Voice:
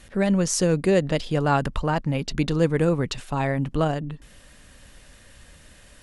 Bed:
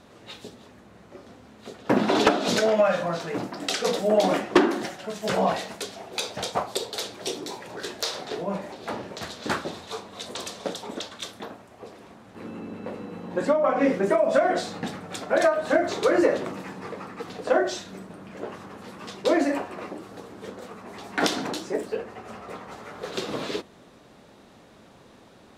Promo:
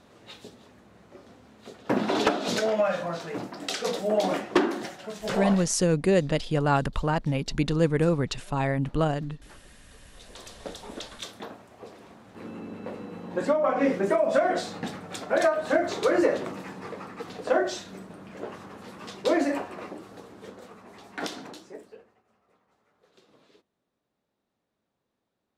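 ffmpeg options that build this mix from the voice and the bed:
-filter_complex "[0:a]adelay=5200,volume=0.794[s0];[1:a]volume=10.6,afade=t=out:st=5.36:d=0.45:silence=0.0749894,afade=t=in:st=9.98:d=1.4:silence=0.0595662,afade=t=out:st=19.63:d=2.6:silence=0.0421697[s1];[s0][s1]amix=inputs=2:normalize=0"

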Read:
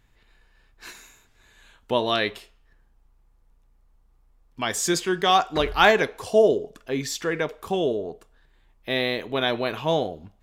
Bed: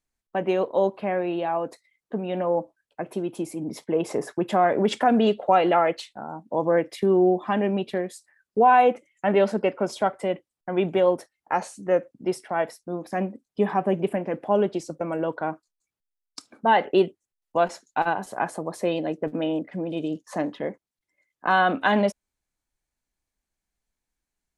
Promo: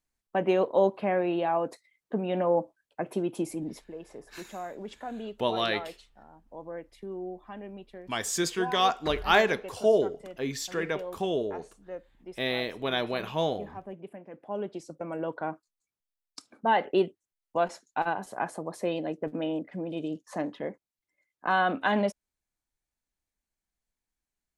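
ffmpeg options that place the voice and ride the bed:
-filter_complex "[0:a]adelay=3500,volume=0.562[s0];[1:a]volume=4.22,afade=t=out:st=3.51:d=0.41:silence=0.133352,afade=t=in:st=14.27:d=1.16:silence=0.211349[s1];[s0][s1]amix=inputs=2:normalize=0"

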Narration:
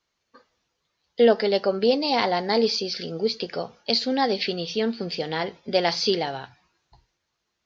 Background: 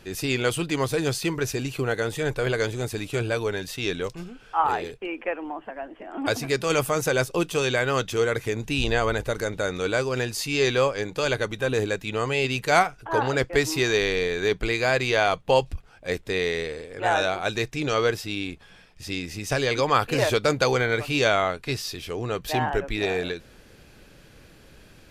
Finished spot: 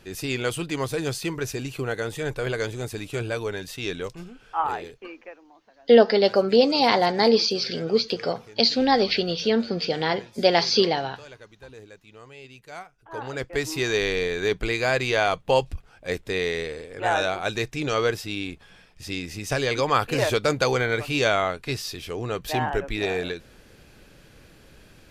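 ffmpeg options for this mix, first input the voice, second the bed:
-filter_complex "[0:a]adelay=4700,volume=1.41[s0];[1:a]volume=7.5,afade=t=out:st=4.59:d=0.84:silence=0.125893,afade=t=in:st=12.93:d=1.14:silence=0.1[s1];[s0][s1]amix=inputs=2:normalize=0"

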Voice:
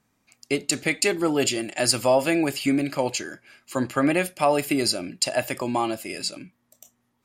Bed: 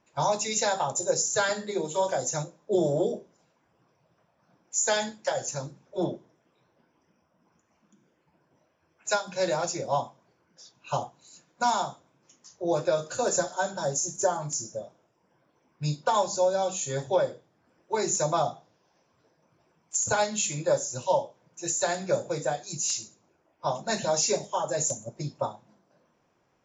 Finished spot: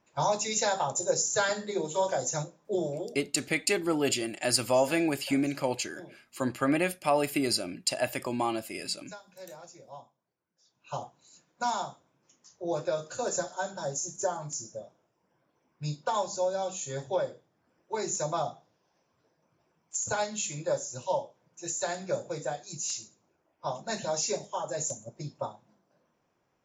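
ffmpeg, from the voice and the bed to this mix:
-filter_complex "[0:a]adelay=2650,volume=0.562[s0];[1:a]volume=4.47,afade=t=out:st=2.45:d=0.77:silence=0.125893,afade=t=in:st=10.59:d=0.49:silence=0.188365[s1];[s0][s1]amix=inputs=2:normalize=0"

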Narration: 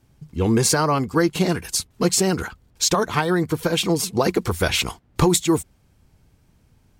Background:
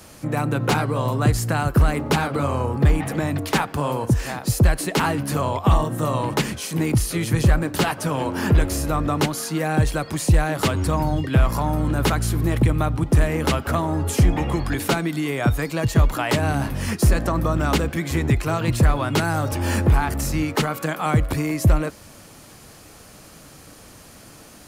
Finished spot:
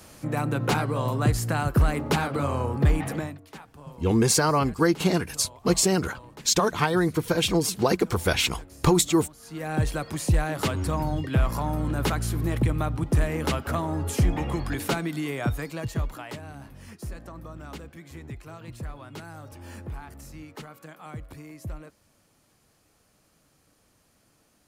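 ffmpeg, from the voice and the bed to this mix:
-filter_complex "[0:a]adelay=3650,volume=0.75[s0];[1:a]volume=5.01,afade=t=out:st=3.12:d=0.26:silence=0.105925,afade=t=in:st=9.39:d=0.43:silence=0.125893,afade=t=out:st=15.24:d=1.19:silence=0.188365[s1];[s0][s1]amix=inputs=2:normalize=0"

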